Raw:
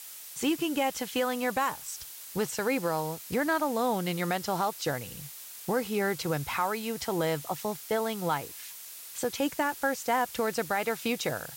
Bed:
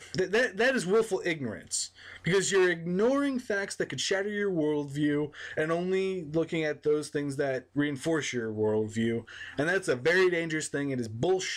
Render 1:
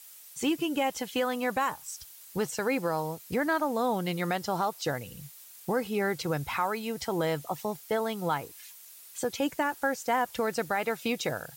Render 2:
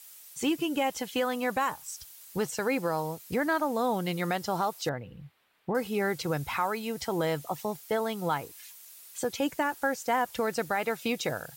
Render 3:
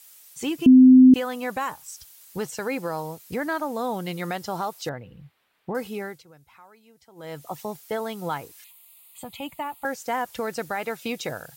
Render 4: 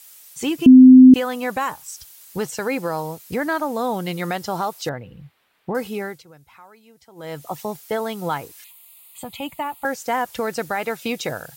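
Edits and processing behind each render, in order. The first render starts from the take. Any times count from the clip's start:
broadband denoise 8 dB, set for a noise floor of −45 dBFS
0:04.89–0:05.75: high-frequency loss of the air 500 metres
0:00.66–0:01.14: beep over 257 Hz −7.5 dBFS; 0:05.85–0:07.55: duck −22 dB, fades 0.40 s; 0:08.64–0:09.85: phaser with its sweep stopped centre 1,600 Hz, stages 6
level +4.5 dB

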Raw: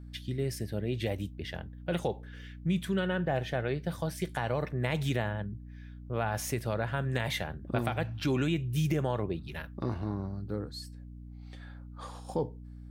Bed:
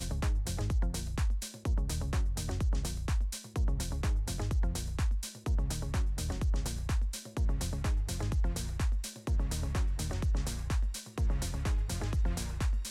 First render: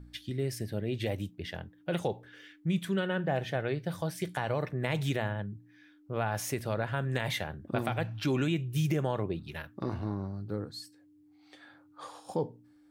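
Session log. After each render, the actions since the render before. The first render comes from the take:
hum removal 60 Hz, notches 4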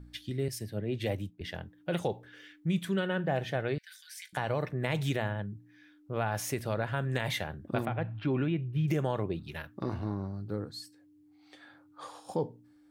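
0:00.48–0:01.41: multiband upward and downward expander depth 100%
0:03.78–0:04.33: Chebyshev high-pass with heavy ripple 1,500 Hz, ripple 3 dB
0:07.85–0:08.88: high-frequency loss of the air 450 metres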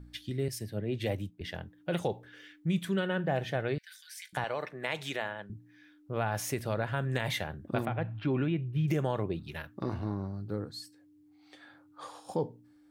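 0:04.44–0:05.50: meter weighting curve A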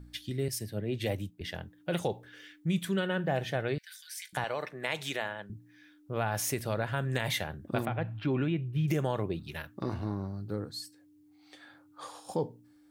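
high-shelf EQ 4,500 Hz +6 dB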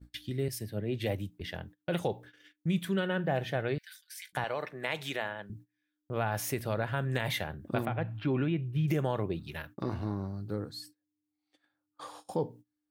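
noise gate −49 dBFS, range −25 dB
dynamic equaliser 7,200 Hz, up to −6 dB, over −56 dBFS, Q 0.84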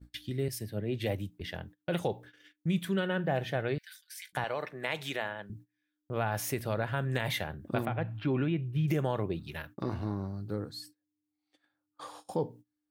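no processing that can be heard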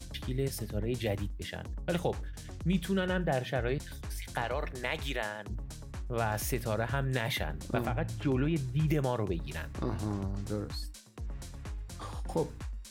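mix in bed −9.5 dB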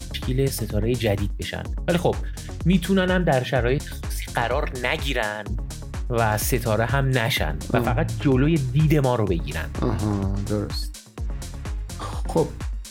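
level +10.5 dB

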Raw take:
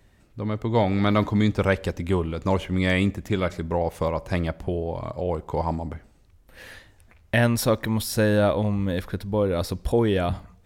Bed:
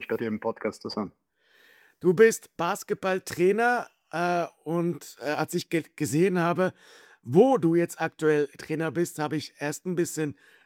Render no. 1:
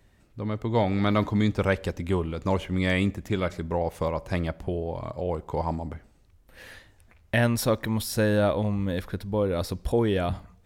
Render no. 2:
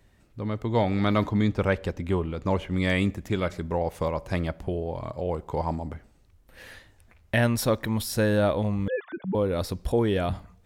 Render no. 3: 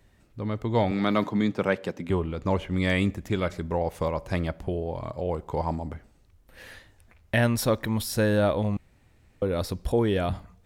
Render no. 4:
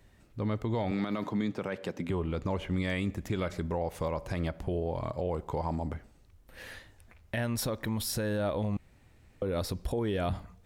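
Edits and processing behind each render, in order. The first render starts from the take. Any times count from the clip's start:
level −2.5 dB
0:01.29–0:02.71: high-shelf EQ 4,600 Hz −7.5 dB; 0:08.88–0:09.35: three sine waves on the formant tracks
0:00.91–0:02.10: high-pass filter 140 Hz 24 dB per octave; 0:08.77–0:09.42: fill with room tone
downward compressor 3 to 1, threshold −26 dBFS, peak gain reduction 7 dB; brickwall limiter −22.5 dBFS, peak gain reduction 8 dB

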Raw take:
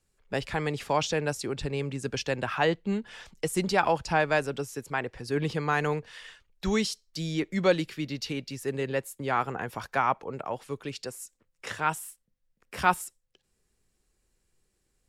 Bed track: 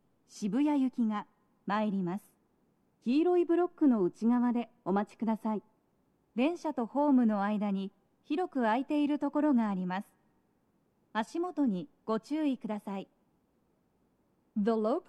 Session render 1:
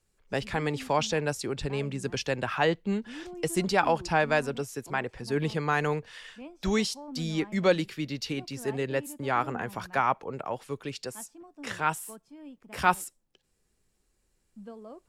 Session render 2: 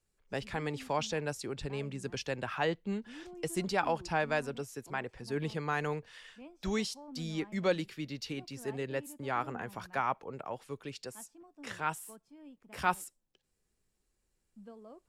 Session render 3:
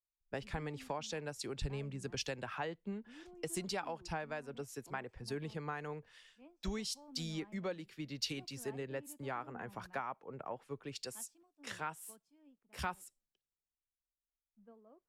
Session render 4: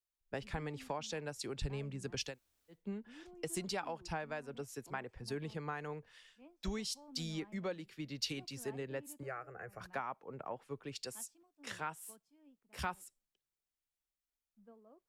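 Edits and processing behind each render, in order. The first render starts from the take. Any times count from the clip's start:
mix in bed track −15.5 dB
level −6.5 dB
downward compressor 16 to 1, threshold −37 dBFS, peak gain reduction 15.5 dB; multiband upward and downward expander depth 100%
0:02.31–0:02.76: fill with room tone, crossfade 0.16 s; 0:09.23–0:09.81: phaser with its sweep stopped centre 940 Hz, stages 6

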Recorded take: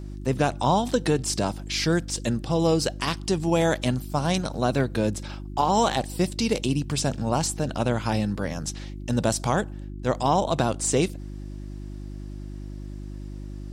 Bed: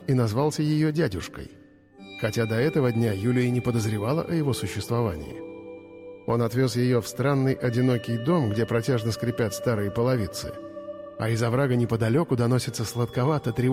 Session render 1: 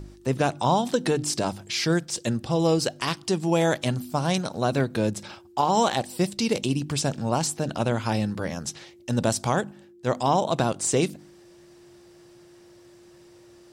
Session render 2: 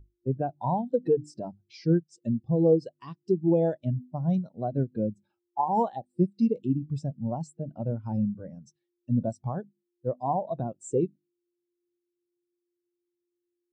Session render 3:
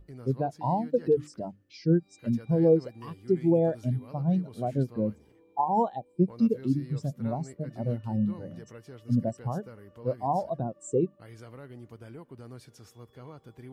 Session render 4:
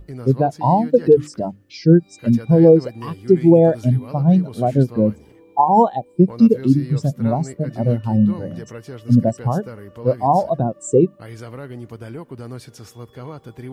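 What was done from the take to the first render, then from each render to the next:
hum removal 50 Hz, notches 6
downward compressor 1.5 to 1, threshold −27 dBFS, peak gain reduction 4 dB; every bin expanded away from the loudest bin 2.5 to 1
mix in bed −23 dB
level +12 dB; brickwall limiter −2 dBFS, peak gain reduction 3 dB

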